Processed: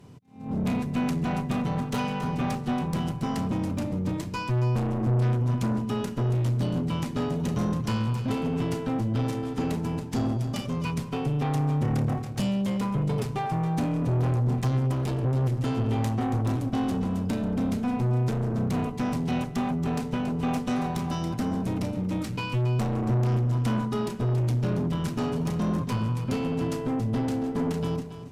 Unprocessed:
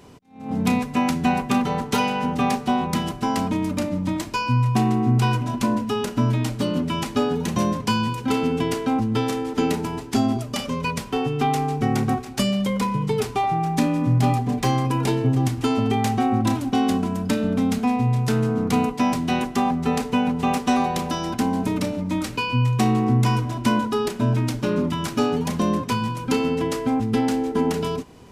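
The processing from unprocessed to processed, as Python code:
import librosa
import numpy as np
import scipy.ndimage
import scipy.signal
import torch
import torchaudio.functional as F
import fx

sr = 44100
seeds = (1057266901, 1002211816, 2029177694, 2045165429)

y = fx.peak_eq(x, sr, hz=130.0, db=13.0, octaves=1.3)
y = fx.tube_stage(y, sr, drive_db=16.0, bias=0.45)
y = y + 10.0 ** (-10.5 / 20.0) * np.pad(y, (int(278 * sr / 1000.0), 0))[:len(y)]
y = y * 10.0 ** (-6.5 / 20.0)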